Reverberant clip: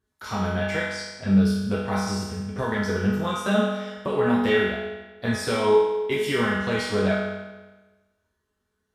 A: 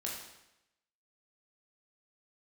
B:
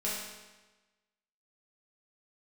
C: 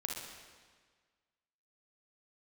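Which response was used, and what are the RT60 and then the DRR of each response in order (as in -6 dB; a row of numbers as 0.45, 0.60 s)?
B; 0.90, 1.2, 1.6 s; -3.5, -8.0, -0.5 dB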